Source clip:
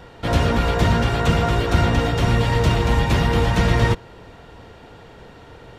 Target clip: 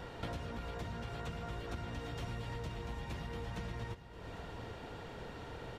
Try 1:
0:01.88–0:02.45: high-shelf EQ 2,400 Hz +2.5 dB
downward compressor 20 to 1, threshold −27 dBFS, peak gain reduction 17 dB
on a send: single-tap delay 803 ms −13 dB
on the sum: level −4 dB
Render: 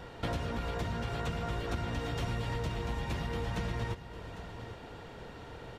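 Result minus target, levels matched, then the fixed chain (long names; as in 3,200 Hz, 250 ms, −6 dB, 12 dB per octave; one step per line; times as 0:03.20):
downward compressor: peak gain reduction −7 dB
0:01.88–0:02.45: high-shelf EQ 2,400 Hz +2.5 dB
downward compressor 20 to 1, threshold −34.5 dBFS, peak gain reduction 24 dB
on a send: single-tap delay 803 ms −13 dB
on the sum: level −4 dB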